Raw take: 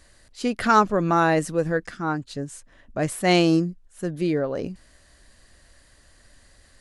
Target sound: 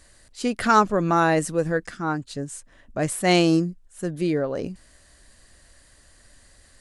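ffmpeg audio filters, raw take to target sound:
ffmpeg -i in.wav -af "equalizer=frequency=8500:width=1.5:gain=5" out.wav

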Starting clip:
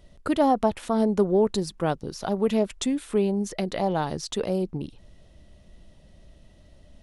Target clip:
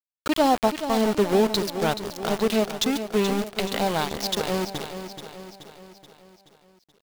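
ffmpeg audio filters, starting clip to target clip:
ffmpeg -i in.wav -filter_complex "[0:a]lowpass=frequency=5000:width=0.5412,lowpass=frequency=5000:width=1.3066,asplit=2[link_01][link_02];[link_02]aecho=0:1:142:0.168[link_03];[link_01][link_03]amix=inputs=2:normalize=0,crystalizer=i=5:c=0,aeval=exprs='val(0)*gte(abs(val(0)),0.0596)':channel_layout=same,asplit=2[link_04][link_05];[link_05]aecho=0:1:428|856|1284|1712|2140|2568:0.316|0.168|0.0888|0.0471|0.025|0.0132[link_06];[link_04][link_06]amix=inputs=2:normalize=0" out.wav

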